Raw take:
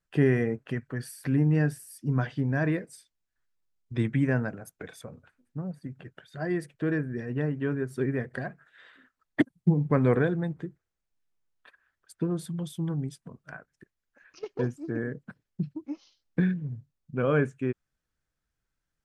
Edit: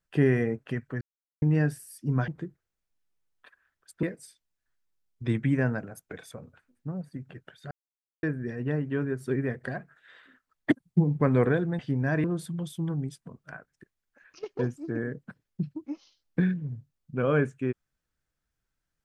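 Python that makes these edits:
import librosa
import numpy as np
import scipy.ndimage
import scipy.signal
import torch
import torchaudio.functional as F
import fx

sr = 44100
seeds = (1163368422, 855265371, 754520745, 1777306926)

y = fx.edit(x, sr, fx.silence(start_s=1.01, length_s=0.41),
    fx.swap(start_s=2.28, length_s=0.45, other_s=10.49, other_length_s=1.75),
    fx.silence(start_s=6.41, length_s=0.52), tone=tone)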